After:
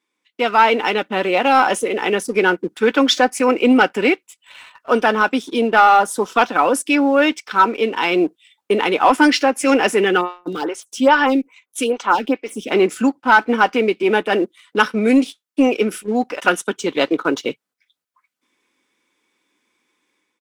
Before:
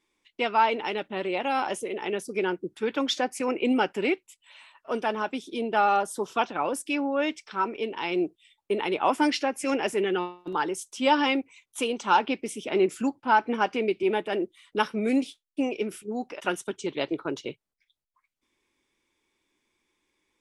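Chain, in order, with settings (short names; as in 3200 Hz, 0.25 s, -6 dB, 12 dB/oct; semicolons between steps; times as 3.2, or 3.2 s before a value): HPF 170 Hz 12 dB/oct; bell 1400 Hz +5 dB 0.55 oct; comb 4 ms, depth 30%; AGC gain up to 8.5 dB; sample leveller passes 1; 10.21–12.71 photocell phaser 2.4 Hz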